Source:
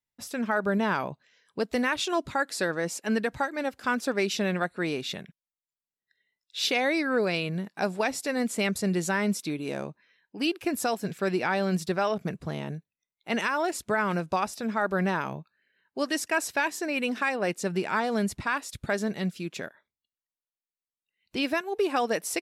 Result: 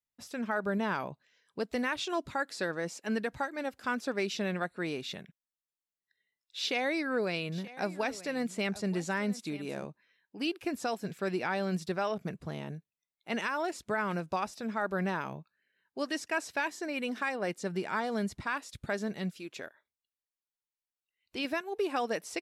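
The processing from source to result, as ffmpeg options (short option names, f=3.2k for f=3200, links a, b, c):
-filter_complex "[0:a]asettb=1/sr,asplit=3[a][b][c];[a]atrim=end=6.594[d];[b]atrim=start=6.59:end=9.85,asetpts=PTS-STARTPTS,afade=t=in:d=0.004:c=qsin,afade=t=out:st=3.256:d=0.004:c=qsin,aecho=1:1:930:0.133,atrim=end_sample=143766[e];[c]atrim=start=9.846[f];[d][e]acrossfade=d=0.004:c1=hsin:c2=qsin[g];[g][f]acrossfade=d=0.004:c1=qsin:c2=hsin,asettb=1/sr,asplit=3[h][i][j];[h]atrim=end=16.694[k];[i]atrim=start=16.69:end=18.48,asetpts=PTS-STARTPTS,afade=t=in:d=0.004:c=qsin,afade=t=out:st=1.786:d=0.004:c=qsin,bandreject=f=2.6k:w=12[l];[j]atrim=start=18.476[m];[k][l]acrossfade=d=0.004:c1=hsin:c2=qsin[n];[n][m]acrossfade=d=0.004:c1=qsin:c2=hsin,asettb=1/sr,asplit=3[o][p][q];[o]atrim=end=19.314[r];[p]atrim=start=19.31:end=21.45,asetpts=PTS-STARTPTS,afade=t=in:d=0.004:c=qsin,afade=t=out:st=2.136:d=0.004:c=qsin,equalizer=f=170:t=o:w=0.75:g=-11[s];[q]atrim=start=21.446[t];[r][s]acrossfade=d=0.004:c1=hsin:c2=qsin[u];[u][t]acrossfade=d=0.004:c1=qsin:c2=hsin,acrossover=split=7000[v][w];[w]acompressor=threshold=-49dB:ratio=4:attack=1:release=60[x];[v][x]amix=inputs=2:normalize=0,volume=-5.5dB"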